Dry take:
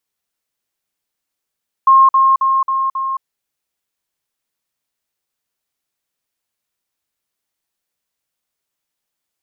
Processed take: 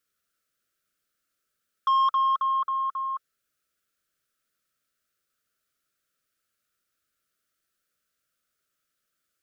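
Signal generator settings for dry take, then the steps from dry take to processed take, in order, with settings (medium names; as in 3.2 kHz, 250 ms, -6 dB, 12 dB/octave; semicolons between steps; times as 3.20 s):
level ladder 1.07 kHz -5 dBFS, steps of -3 dB, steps 5, 0.22 s 0.05 s
FFT filter 640 Hz 0 dB, 910 Hz -25 dB, 1.3 kHz +10 dB, 2 kHz -1 dB; saturation -18 dBFS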